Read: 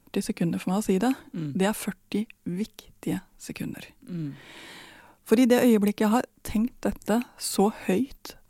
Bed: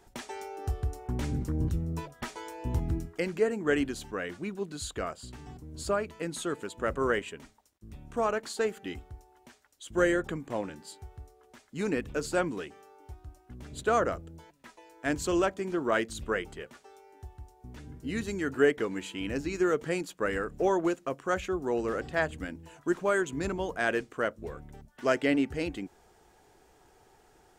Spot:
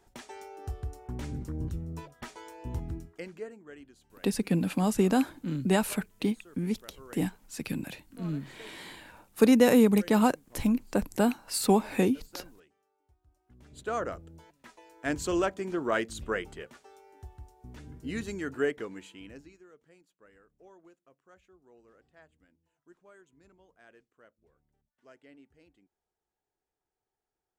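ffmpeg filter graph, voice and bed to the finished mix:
-filter_complex "[0:a]adelay=4100,volume=-0.5dB[a];[1:a]volume=16dB,afade=t=out:st=2.75:d=0.93:silence=0.141254,afade=t=in:st=13.22:d=1.48:silence=0.0891251,afade=t=out:st=18.01:d=1.6:silence=0.0375837[b];[a][b]amix=inputs=2:normalize=0"

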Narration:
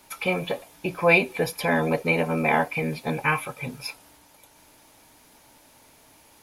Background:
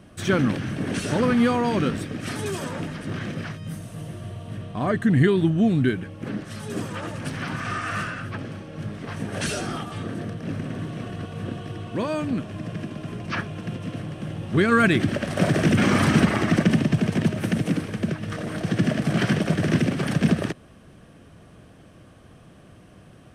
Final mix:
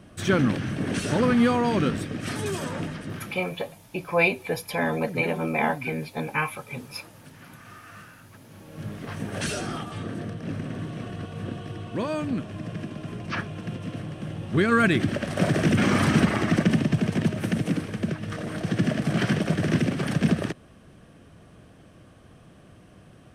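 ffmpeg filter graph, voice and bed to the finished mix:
-filter_complex "[0:a]adelay=3100,volume=-3dB[a];[1:a]volume=15dB,afade=t=out:st=2.87:d=0.57:silence=0.141254,afade=t=in:st=8.46:d=0.45:silence=0.16788[b];[a][b]amix=inputs=2:normalize=0"

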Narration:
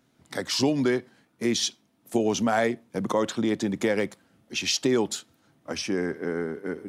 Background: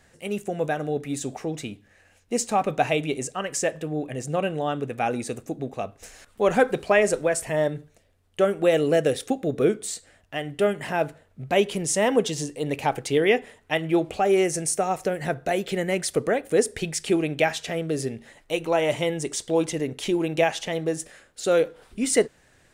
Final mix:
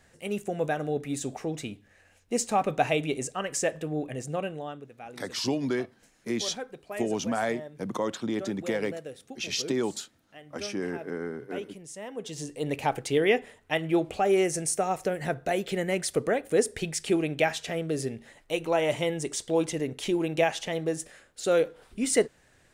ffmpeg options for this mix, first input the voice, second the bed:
-filter_complex "[0:a]adelay=4850,volume=-5dB[a];[1:a]volume=13dB,afade=t=out:st=4.05:d=0.84:silence=0.158489,afade=t=in:st=12.16:d=0.46:silence=0.16788[b];[a][b]amix=inputs=2:normalize=0"

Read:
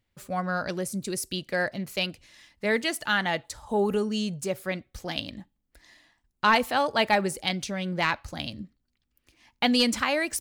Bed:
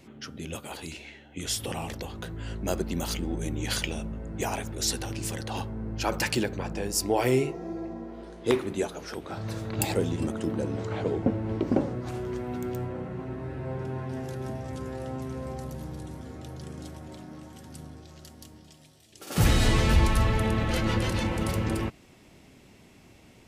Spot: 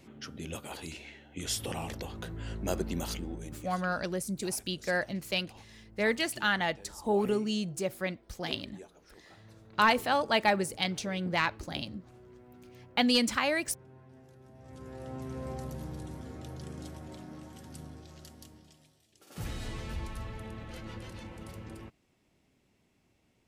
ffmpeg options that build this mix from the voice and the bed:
-filter_complex "[0:a]adelay=3350,volume=-3dB[a];[1:a]volume=15.5dB,afade=t=out:st=2.9:d=0.81:silence=0.125893,afade=t=in:st=14.52:d=0.99:silence=0.11885,afade=t=out:st=18.21:d=1.1:silence=0.188365[b];[a][b]amix=inputs=2:normalize=0"

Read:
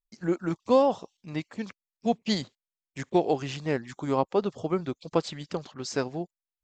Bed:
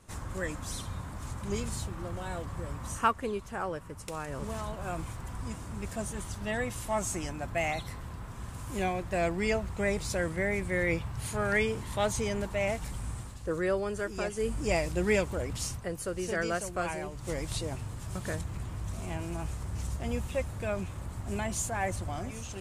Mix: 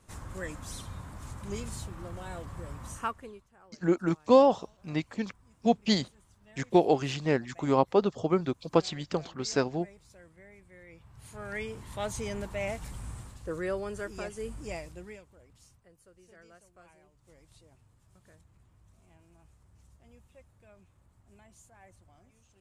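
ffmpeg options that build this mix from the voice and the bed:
-filter_complex "[0:a]adelay=3600,volume=1.5dB[a];[1:a]volume=17dB,afade=t=out:st=2.84:d=0.64:silence=0.0944061,afade=t=in:st=10.93:d=1.42:silence=0.0944061,afade=t=out:st=14.06:d=1.14:silence=0.0841395[b];[a][b]amix=inputs=2:normalize=0"

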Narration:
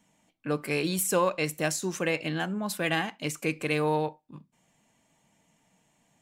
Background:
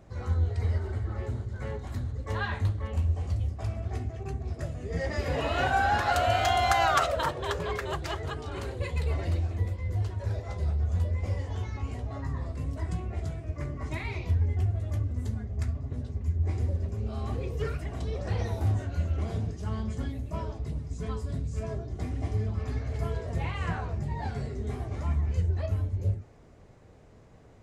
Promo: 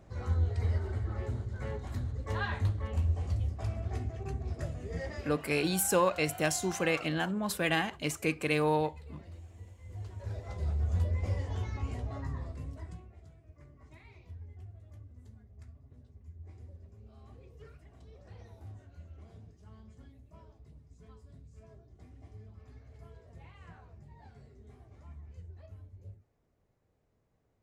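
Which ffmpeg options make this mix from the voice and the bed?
-filter_complex "[0:a]adelay=4800,volume=-1.5dB[a];[1:a]volume=15.5dB,afade=t=out:st=4.69:d=0.73:silence=0.133352,afade=t=in:st=9.78:d=1.18:silence=0.125893,afade=t=out:st=12:d=1.13:silence=0.112202[b];[a][b]amix=inputs=2:normalize=0"

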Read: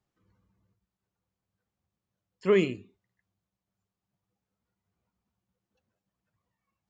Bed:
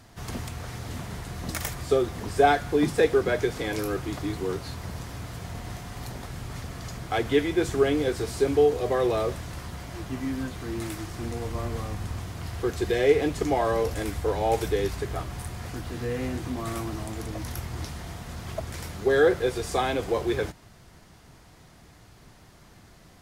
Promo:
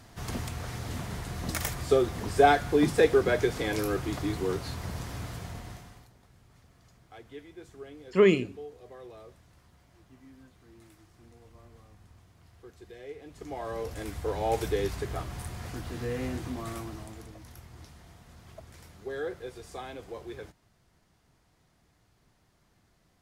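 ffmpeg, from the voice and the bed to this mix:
-filter_complex "[0:a]adelay=5700,volume=2.5dB[a];[1:a]volume=19.5dB,afade=t=out:st=5.24:d=0.84:silence=0.0749894,afade=t=in:st=13.25:d=1.39:silence=0.1,afade=t=out:st=16.34:d=1.05:silence=0.251189[b];[a][b]amix=inputs=2:normalize=0"

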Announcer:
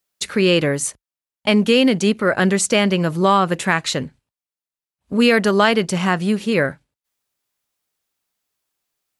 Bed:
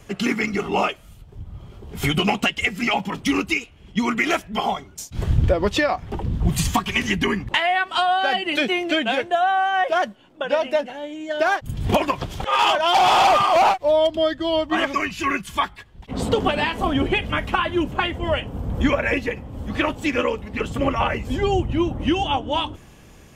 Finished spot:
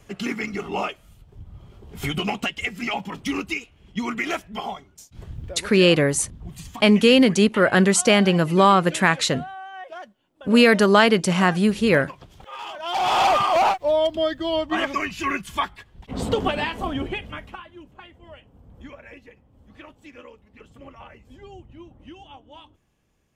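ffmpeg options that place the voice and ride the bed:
-filter_complex "[0:a]adelay=5350,volume=0dB[a];[1:a]volume=9.5dB,afade=t=out:st=4.37:d=0.96:silence=0.251189,afade=t=in:st=12.74:d=0.5:silence=0.177828,afade=t=out:st=16.47:d=1.2:silence=0.1[b];[a][b]amix=inputs=2:normalize=0"

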